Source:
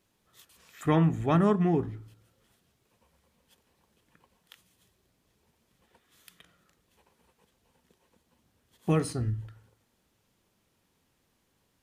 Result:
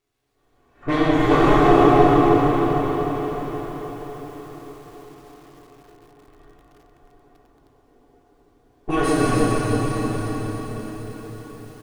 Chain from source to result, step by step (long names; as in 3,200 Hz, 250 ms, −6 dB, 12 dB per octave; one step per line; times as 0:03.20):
lower of the sound and its delayed copy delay 2.7 ms
automatic gain control gain up to 11 dB
low-pass that shuts in the quiet parts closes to 780 Hz, open at −16 dBFS
surface crackle 480 per second −61 dBFS
high-shelf EQ 4,800 Hz −4.5 dB
comb filter 7 ms, depth 40%
feedback delay with all-pass diffusion 867 ms, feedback 43%, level −13.5 dB
dense smooth reverb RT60 4.6 s, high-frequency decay 0.8×, DRR −10 dB
feedback echo at a low word length 307 ms, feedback 55%, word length 7 bits, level −5 dB
level −6.5 dB